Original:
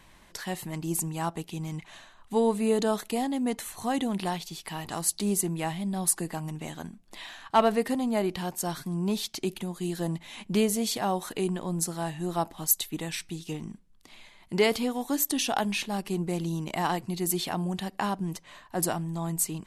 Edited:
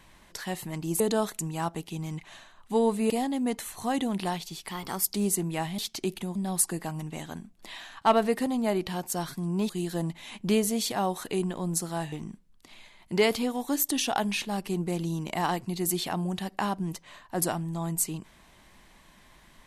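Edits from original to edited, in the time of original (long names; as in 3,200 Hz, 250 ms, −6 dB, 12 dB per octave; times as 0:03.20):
0:02.71–0:03.10: move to 0:01.00
0:04.71–0:05.20: play speed 113%
0:09.18–0:09.75: move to 0:05.84
0:12.18–0:13.53: remove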